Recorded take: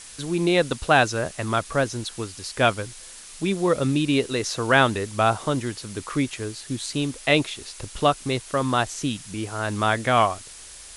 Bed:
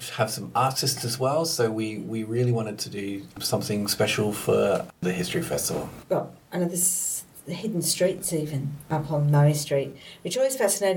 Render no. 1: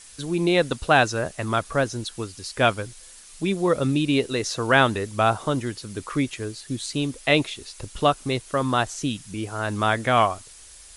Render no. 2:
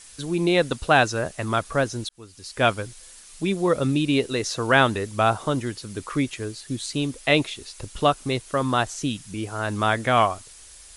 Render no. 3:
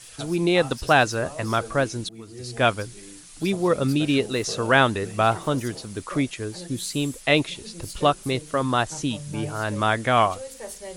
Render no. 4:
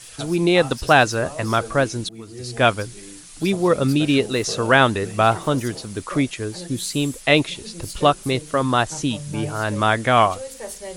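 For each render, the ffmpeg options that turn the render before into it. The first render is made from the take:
-af "afftdn=nr=6:nf=-43"
-filter_complex "[0:a]asplit=2[a][b];[a]atrim=end=2.09,asetpts=PTS-STARTPTS,afade=t=out:st=2.086:d=0.004:c=hsin[c];[b]atrim=start=2.09,asetpts=PTS-STARTPTS,afade=t=in:d=0.59[d];[c][d]concat=n=2:v=0:a=1"
-filter_complex "[1:a]volume=-15dB[a];[0:a][a]amix=inputs=2:normalize=0"
-af "volume=3.5dB,alimiter=limit=-1dB:level=0:latency=1"

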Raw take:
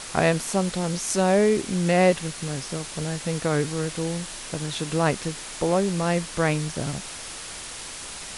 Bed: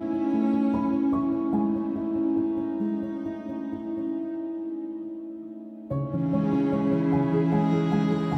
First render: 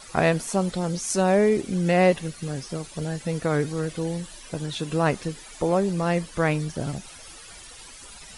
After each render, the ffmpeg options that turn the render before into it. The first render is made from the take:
-af "afftdn=nr=13:nf=-37"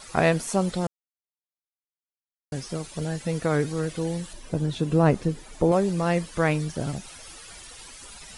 -filter_complex "[0:a]asettb=1/sr,asplit=3[a][b][c];[a]atrim=end=4.334[d];[b]atrim=start=4.33:end=5.72,asetpts=PTS-STARTPTS,afade=t=in:d=0.004:c=qsin,afade=t=out:st=1.386:d=0.004:c=qsin,tiltshelf=f=820:g=6[e];[c]atrim=start=5.716[f];[d][e]acrossfade=d=0.004:c1=hsin:c2=qsin[g];[g][f]acrossfade=d=0.004:c1=qsin:c2=hsin,asplit=3[h][i][j];[h]atrim=end=0.87,asetpts=PTS-STARTPTS,afade=t=out:st=0.866:d=0.004:c=hsin[k];[i]atrim=start=0.87:end=2.52,asetpts=PTS-STARTPTS,volume=0[l];[j]atrim=start=2.52,asetpts=PTS-STARTPTS,afade=t=in:d=0.004:c=hsin[m];[k][l][m]concat=n=3:v=0:a=1"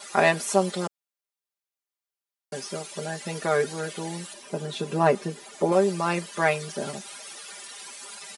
-af "highpass=320,aecho=1:1:5:0.99"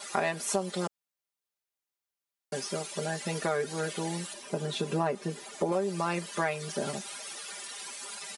-af "acompressor=threshold=-26dB:ratio=5"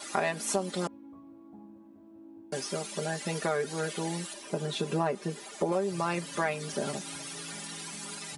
-filter_complex "[1:a]volume=-25.5dB[a];[0:a][a]amix=inputs=2:normalize=0"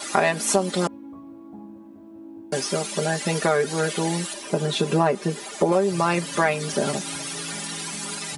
-af "volume=9dB"

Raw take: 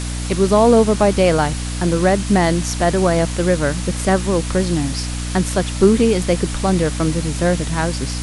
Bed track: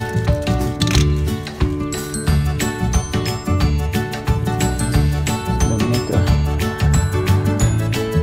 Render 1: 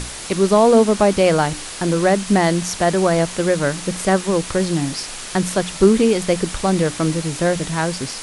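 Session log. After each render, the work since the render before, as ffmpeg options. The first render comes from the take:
-af "bandreject=f=60:t=h:w=6,bandreject=f=120:t=h:w=6,bandreject=f=180:t=h:w=6,bandreject=f=240:t=h:w=6,bandreject=f=300:t=h:w=6"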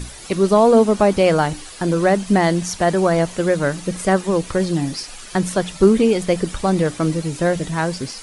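-af "afftdn=nr=10:nf=-32"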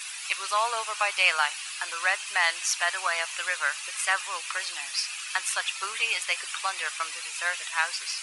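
-af "highpass=f=1.1k:w=0.5412,highpass=f=1.1k:w=1.3066,equalizer=f=2.6k:w=4.3:g=10"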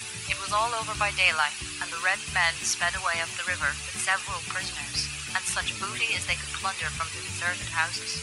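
-filter_complex "[1:a]volume=-25.5dB[a];[0:a][a]amix=inputs=2:normalize=0"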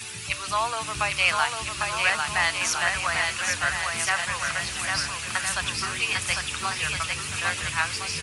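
-af "aecho=1:1:800|1360|1752|2026|2218:0.631|0.398|0.251|0.158|0.1"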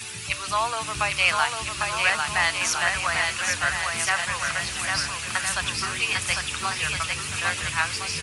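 -af "volume=1dB"

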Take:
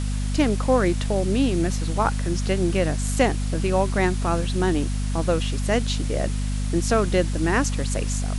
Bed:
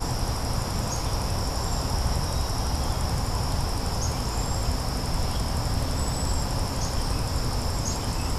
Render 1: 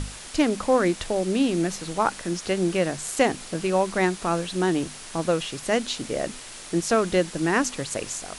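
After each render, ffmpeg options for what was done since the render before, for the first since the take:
-af "bandreject=f=50:t=h:w=6,bandreject=f=100:t=h:w=6,bandreject=f=150:t=h:w=6,bandreject=f=200:t=h:w=6,bandreject=f=250:t=h:w=6"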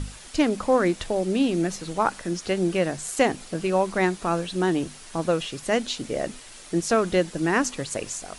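-af "afftdn=nr=6:nf=-41"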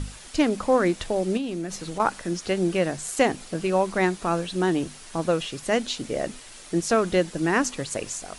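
-filter_complex "[0:a]asettb=1/sr,asplit=3[a][b][c];[a]atrim=end=1.374[d];[b]atrim=start=1.37:end=2,asetpts=PTS-STARTPTS,afade=t=in:d=0.004:c=qsin,afade=t=out:st=0.626:d=0.004:c=qsin,acompressor=threshold=-27dB:ratio=4:attack=3.2:release=140:knee=1:detection=peak[e];[c]atrim=start=1.996[f];[d][e]acrossfade=d=0.004:c1=hsin:c2=qsin[g];[g][f]acrossfade=d=0.004:c1=qsin:c2=hsin"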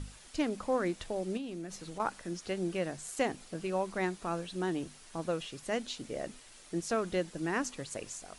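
-af "volume=-10.5dB"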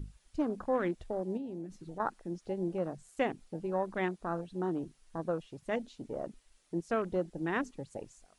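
-af "afwtdn=0.0112"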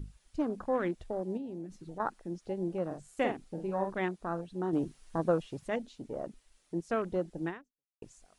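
-filter_complex "[0:a]asettb=1/sr,asplit=3[a][b][c];[a]atrim=end=2.864[d];[b]atrim=start=2.86:end=3.93,asetpts=PTS-STARTPTS,afade=t=in:d=0.004:c=qsin,afade=t=out:st=1.066:d=0.004:c=qsin,asplit=2[e][f];[f]adelay=47,volume=-5dB[g];[e][g]amix=inputs=2:normalize=0,atrim=end_sample=47187[h];[c]atrim=start=3.926[i];[d][h]acrossfade=d=0.004:c1=hsin:c2=qsin[j];[j][i]acrossfade=d=0.004:c1=qsin:c2=hsin,asplit=4[k][l][m][n];[k]atrim=end=4.732[o];[l]atrim=start=4.728:end=5.682,asetpts=PTS-STARTPTS,volume=6dB[p];[m]atrim=start=5.678:end=8.02,asetpts=PTS-STARTPTS,afade=t=out:st=1.802:d=0.54:c=exp[q];[n]atrim=start=8.02,asetpts=PTS-STARTPTS,afade=t=in:d=0.004:c=hsin[r];[o][p]acrossfade=d=0.004:c1=hsin:c2=hsin[s];[q][r]concat=n=2:v=0:a=1[t];[s][t]acrossfade=d=0.004:c1=hsin:c2=hsin"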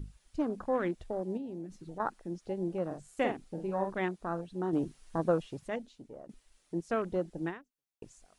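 -filter_complex "[0:a]asplit=2[a][b];[a]atrim=end=6.29,asetpts=PTS-STARTPTS,afade=t=out:st=5.45:d=0.84:silence=0.211349[c];[b]atrim=start=6.29,asetpts=PTS-STARTPTS,afade=t=in:d=0.004:c=hsin:silence=0.211349[d];[c][d]concat=n=2:v=0:a=1"

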